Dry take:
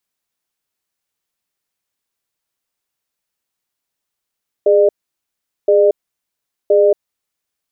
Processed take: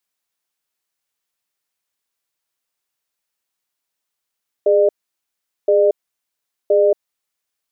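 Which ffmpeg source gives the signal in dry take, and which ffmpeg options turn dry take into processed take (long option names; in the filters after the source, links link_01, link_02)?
-f lavfi -i "aevalsrc='0.299*(sin(2*PI*412*t)+sin(2*PI*602*t))*clip(min(mod(t,1.02),0.23-mod(t,1.02))/0.005,0,1)':duration=2.56:sample_rate=44100"
-af "lowshelf=frequency=370:gain=-7"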